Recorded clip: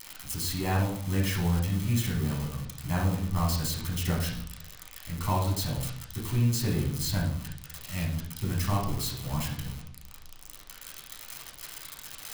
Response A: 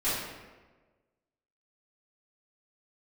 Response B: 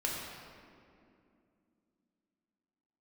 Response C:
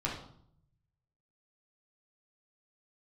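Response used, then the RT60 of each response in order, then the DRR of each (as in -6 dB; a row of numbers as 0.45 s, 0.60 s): C; 1.3 s, 2.5 s, 0.65 s; -14.5 dB, -3.5 dB, -4.5 dB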